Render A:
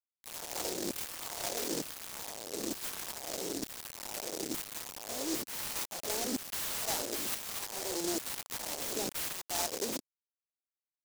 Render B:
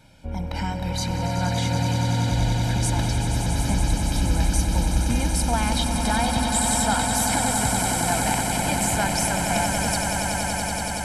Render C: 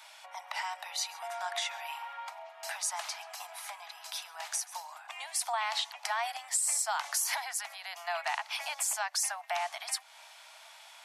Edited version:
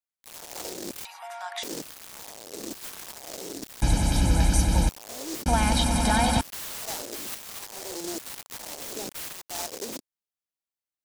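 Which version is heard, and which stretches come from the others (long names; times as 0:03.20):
A
0:01.05–0:01.63: punch in from C
0:03.82–0:04.89: punch in from B
0:05.46–0:06.41: punch in from B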